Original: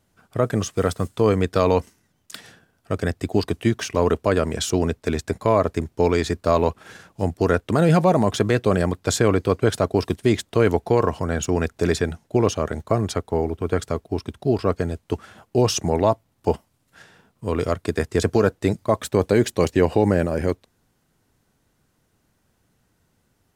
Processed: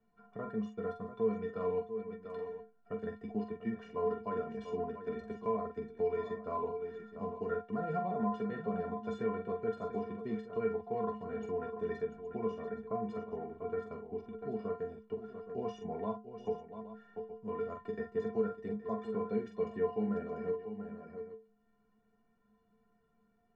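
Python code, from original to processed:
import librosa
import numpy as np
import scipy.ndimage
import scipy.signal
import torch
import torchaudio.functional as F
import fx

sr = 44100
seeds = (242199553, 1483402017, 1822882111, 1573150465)

y = scipy.signal.sosfilt(scipy.signal.butter(2, 1500.0, 'lowpass', fs=sr, output='sos'), x)
y = fx.stiff_resonator(y, sr, f0_hz=210.0, decay_s=0.34, stiffness=0.03)
y = fx.echo_multitap(y, sr, ms=(44, 692, 819), db=(-6.5, -11.5, -17.0))
y = fx.band_squash(y, sr, depth_pct=40)
y = F.gain(torch.from_numpy(y), -3.5).numpy()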